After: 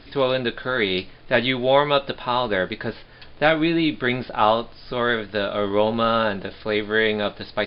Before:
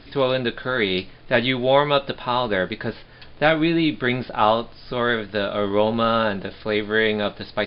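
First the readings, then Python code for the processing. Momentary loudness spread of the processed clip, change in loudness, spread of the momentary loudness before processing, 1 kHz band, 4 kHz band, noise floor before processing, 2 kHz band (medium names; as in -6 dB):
8 LU, -0.5 dB, 8 LU, 0.0 dB, 0.0 dB, -44 dBFS, 0.0 dB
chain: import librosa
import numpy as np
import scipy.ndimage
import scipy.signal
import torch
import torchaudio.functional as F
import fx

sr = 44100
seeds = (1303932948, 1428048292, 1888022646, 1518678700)

y = fx.peak_eq(x, sr, hz=150.0, db=-2.5, octaves=1.4)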